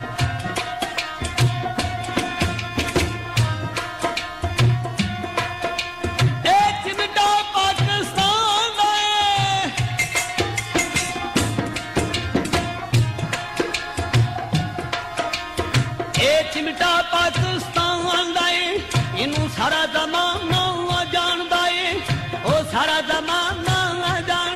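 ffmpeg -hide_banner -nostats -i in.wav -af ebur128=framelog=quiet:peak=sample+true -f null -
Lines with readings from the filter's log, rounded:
Integrated loudness:
  I:         -20.6 LUFS
  Threshold: -30.6 LUFS
Loudness range:
  LRA:         4.3 LU
  Threshold: -40.5 LUFS
  LRA low:   -22.7 LUFS
  LRA high:  -18.4 LUFS
Sample peak:
  Peak:       -7.8 dBFS
True peak:
  Peak:       -7.7 dBFS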